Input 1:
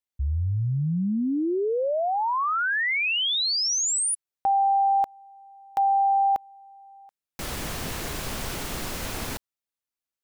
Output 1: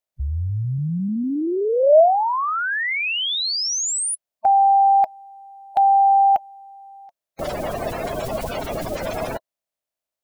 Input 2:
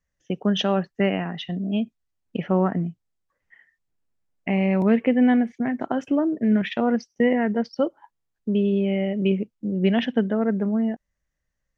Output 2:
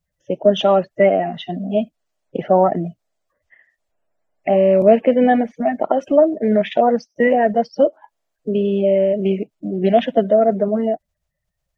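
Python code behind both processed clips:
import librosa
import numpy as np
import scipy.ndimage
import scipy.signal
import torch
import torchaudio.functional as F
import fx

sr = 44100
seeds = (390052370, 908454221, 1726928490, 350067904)

y = fx.spec_quant(x, sr, step_db=30)
y = fx.quant_float(y, sr, bits=8)
y = fx.peak_eq(y, sr, hz=630.0, db=14.0, octaves=0.49)
y = y * 10.0 ** (2.0 / 20.0)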